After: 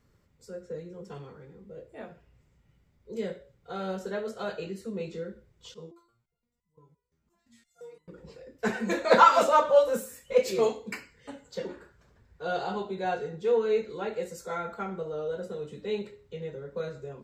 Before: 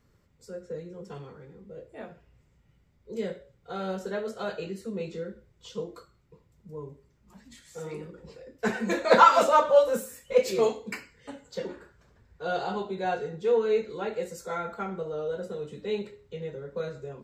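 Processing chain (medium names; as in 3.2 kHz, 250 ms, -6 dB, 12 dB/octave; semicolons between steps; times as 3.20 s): 5.74–8.08 s: resonator arpeggio 5.8 Hz 81–1000 Hz; trim -1 dB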